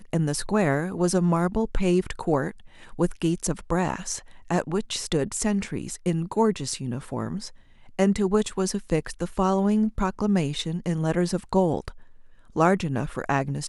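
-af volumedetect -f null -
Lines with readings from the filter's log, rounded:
mean_volume: -25.2 dB
max_volume: -7.0 dB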